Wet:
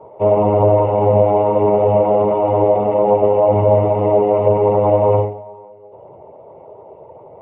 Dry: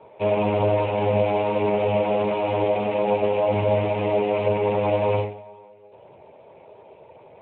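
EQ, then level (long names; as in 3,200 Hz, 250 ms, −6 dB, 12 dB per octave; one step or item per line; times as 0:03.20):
Savitzky-Golay smoothing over 65 samples
parametric band 220 Hz −4.5 dB 0.49 octaves
+8.5 dB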